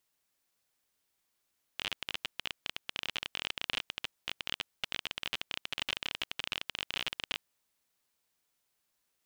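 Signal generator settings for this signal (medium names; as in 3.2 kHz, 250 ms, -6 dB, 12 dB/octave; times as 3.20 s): random clicks 27 per s -16.5 dBFS 5.59 s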